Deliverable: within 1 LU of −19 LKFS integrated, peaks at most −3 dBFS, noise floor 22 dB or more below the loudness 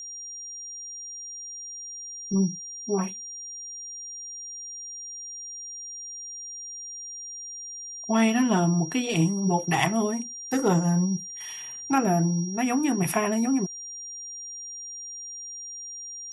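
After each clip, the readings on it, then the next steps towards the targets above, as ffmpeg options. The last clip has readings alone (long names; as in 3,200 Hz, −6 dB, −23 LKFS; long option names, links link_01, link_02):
interfering tone 5,700 Hz; level of the tone −36 dBFS; integrated loudness −28.5 LKFS; sample peak −5.5 dBFS; target loudness −19.0 LKFS
→ -af "bandreject=frequency=5700:width=30"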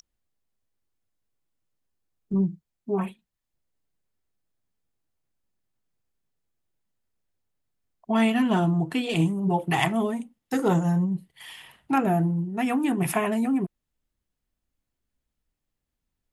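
interfering tone none found; integrated loudness −25.5 LKFS; sample peak −5.5 dBFS; target loudness −19.0 LKFS
→ -af "volume=6.5dB,alimiter=limit=-3dB:level=0:latency=1"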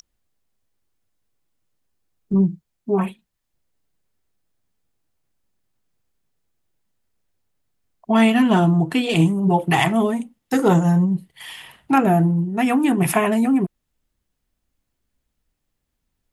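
integrated loudness −19.0 LKFS; sample peak −3.0 dBFS; background noise floor −77 dBFS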